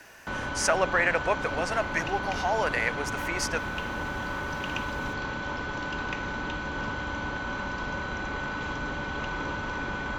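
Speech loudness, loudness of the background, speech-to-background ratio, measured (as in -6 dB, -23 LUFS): -28.5 LUFS, -32.5 LUFS, 4.0 dB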